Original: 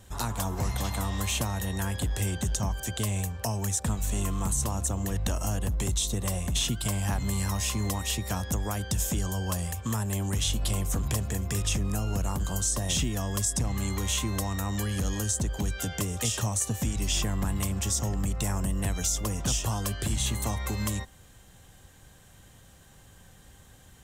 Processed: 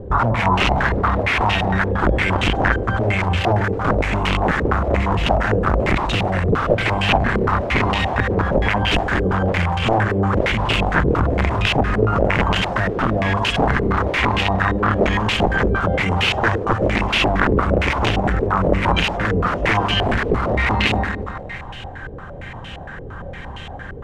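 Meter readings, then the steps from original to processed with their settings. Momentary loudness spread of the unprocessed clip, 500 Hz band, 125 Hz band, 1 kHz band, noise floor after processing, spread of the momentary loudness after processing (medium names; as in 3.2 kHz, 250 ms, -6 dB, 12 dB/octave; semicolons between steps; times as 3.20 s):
3 LU, +18.5 dB, +8.5 dB, +19.0 dB, -33 dBFS, 13 LU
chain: hum notches 50/100/150/200/250 Hz; dynamic bell 360 Hz, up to -5 dB, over -46 dBFS, Q 1.2; integer overflow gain 25 dB; on a send: two-band feedback delay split 630 Hz, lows 100 ms, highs 172 ms, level -9 dB; on the sum: loudness maximiser +29.5 dB; step-sequenced low-pass 8.7 Hz 450–2800 Hz; trim -9.5 dB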